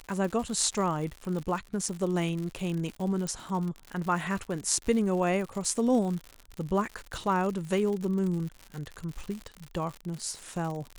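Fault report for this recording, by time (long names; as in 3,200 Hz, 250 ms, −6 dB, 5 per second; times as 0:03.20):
surface crackle 110 per second −34 dBFS
0:03.27: click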